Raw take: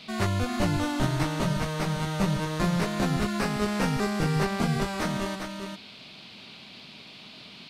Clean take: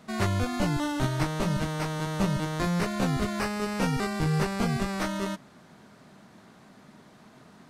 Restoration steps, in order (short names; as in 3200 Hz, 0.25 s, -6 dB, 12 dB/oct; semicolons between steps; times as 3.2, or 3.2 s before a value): noise print and reduce 7 dB; inverse comb 0.4 s -6 dB